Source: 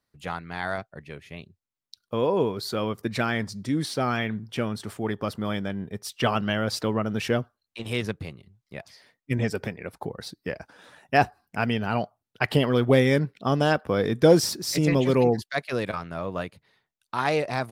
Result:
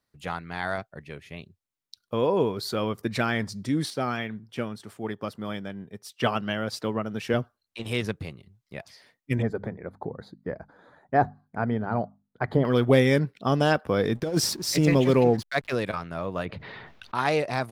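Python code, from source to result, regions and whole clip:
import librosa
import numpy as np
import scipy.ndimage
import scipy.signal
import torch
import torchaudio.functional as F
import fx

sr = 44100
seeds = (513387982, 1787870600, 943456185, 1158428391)

y = fx.chain(x, sr, fx.highpass(hz=100.0, slope=12),
    fx.upward_expand(threshold_db=-35.0, expansion=1.5), at=(3.9, 7.34))
y = fx.chain(y, sr, fx.moving_average(points=16),
    fx.hum_notches(base_hz=50, count=5), at=(9.42, 12.65))
y = fx.chain(y, sr, fx.over_compress(threshold_db=-19.0, ratio=-0.5),
    fx.backlash(play_db=-39.0), at=(14.15, 15.75))
y = fx.chain(y, sr, fx.air_absorb(metres=310.0),
    fx.env_flatten(amount_pct=70), at=(16.45, 17.15))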